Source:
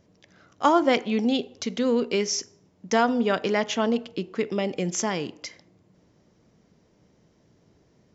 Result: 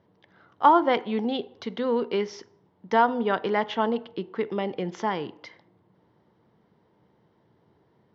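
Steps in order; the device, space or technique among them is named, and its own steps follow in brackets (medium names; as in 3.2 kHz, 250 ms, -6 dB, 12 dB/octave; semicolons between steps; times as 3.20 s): guitar cabinet (cabinet simulation 110–3500 Hz, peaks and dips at 170 Hz -4 dB, 260 Hz -6 dB, 600 Hz -4 dB, 910 Hz +7 dB, 2.5 kHz -9 dB)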